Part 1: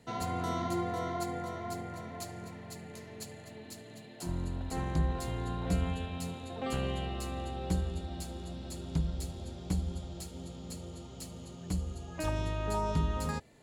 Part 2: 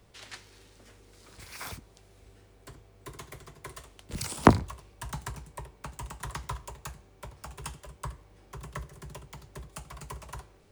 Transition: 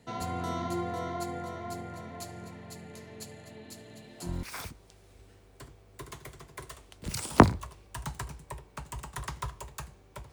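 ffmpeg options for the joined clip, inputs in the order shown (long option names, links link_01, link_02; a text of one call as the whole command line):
ffmpeg -i cue0.wav -i cue1.wav -filter_complex "[1:a]asplit=2[link_01][link_02];[0:a]apad=whole_dur=10.32,atrim=end=10.32,atrim=end=4.432[link_03];[link_02]atrim=start=1.498:end=7.39[link_04];[link_01]atrim=start=0.87:end=1.5,asetpts=PTS-STARTPTS,volume=-11dB,afade=type=in:duration=0.004:curve=hsin,afade=type=out:start_time=0.626:duration=0.004:curve=hsin,adelay=3800[link_05];[link_03][link_04]acrossfade=duration=0.004:curve1=hsin:curve2=hsin[link_06];[link_06][link_05]amix=inputs=2:normalize=0" out.wav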